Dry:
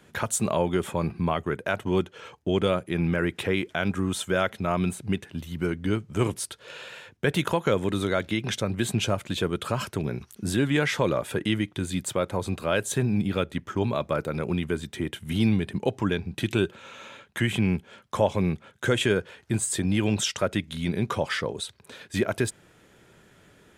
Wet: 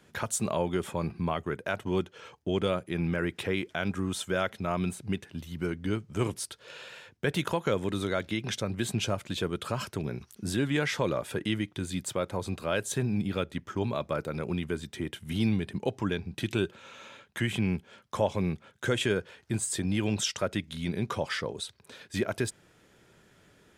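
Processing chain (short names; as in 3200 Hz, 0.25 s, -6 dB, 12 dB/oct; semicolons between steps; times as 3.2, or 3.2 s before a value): bell 5100 Hz +3.5 dB 0.58 oct; gain -4.5 dB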